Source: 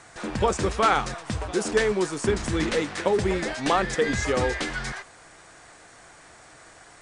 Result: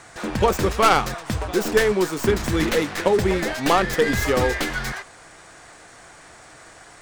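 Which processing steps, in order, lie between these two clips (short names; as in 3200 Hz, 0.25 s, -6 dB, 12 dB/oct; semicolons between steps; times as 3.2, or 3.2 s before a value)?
tracing distortion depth 0.12 ms; gain +4 dB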